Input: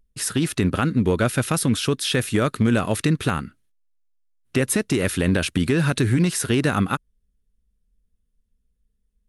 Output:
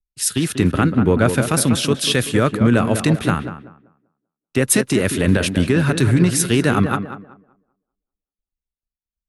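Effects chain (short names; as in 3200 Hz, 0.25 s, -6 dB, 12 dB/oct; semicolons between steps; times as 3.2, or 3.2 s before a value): gate with hold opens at -60 dBFS; tape echo 0.193 s, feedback 49%, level -5 dB, low-pass 1700 Hz; three-band expander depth 70%; gain +3.5 dB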